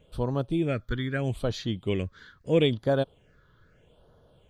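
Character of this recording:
phaser sweep stages 6, 0.78 Hz, lowest notch 670–2,400 Hz

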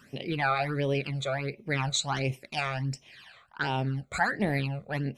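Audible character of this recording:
phaser sweep stages 12, 1.4 Hz, lowest notch 280–1,500 Hz

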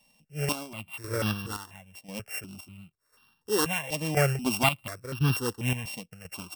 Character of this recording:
a buzz of ramps at a fixed pitch in blocks of 16 samples
chopped level 0.96 Hz, depth 65%, duty 50%
notches that jump at a steady rate 4.1 Hz 380–2,100 Hz

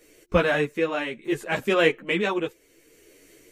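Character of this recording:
tremolo triangle 0.68 Hz, depth 60%
a shimmering, thickened sound

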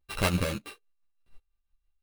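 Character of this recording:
a buzz of ramps at a fixed pitch in blocks of 16 samples
tremolo triangle 6 Hz, depth 65%
aliases and images of a low sample rate 6,700 Hz, jitter 0%
a shimmering, thickened sound

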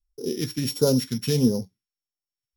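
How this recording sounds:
a buzz of ramps at a fixed pitch in blocks of 8 samples
phaser sweep stages 2, 1.5 Hz, lowest notch 530–2,000 Hz
AAC

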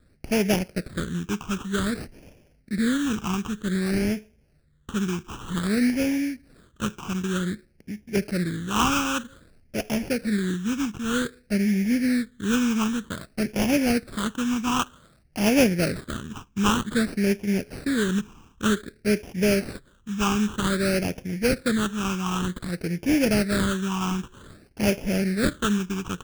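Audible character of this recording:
aliases and images of a low sample rate 2,000 Hz, jitter 20%
phaser sweep stages 8, 0.53 Hz, lowest notch 570–1,200 Hz

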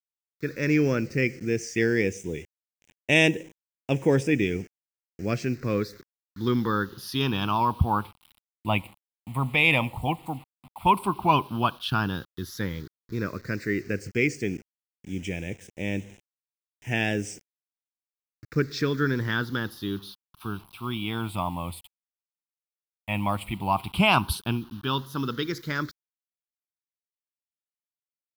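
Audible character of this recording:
a quantiser's noise floor 8 bits, dither none
phaser sweep stages 6, 0.078 Hz, lowest notch 410–1,200 Hz

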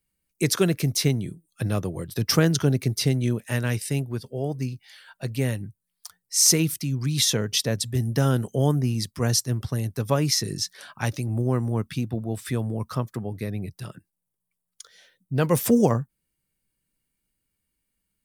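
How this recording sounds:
background noise floor −81 dBFS
spectral slope −4.5 dB per octave

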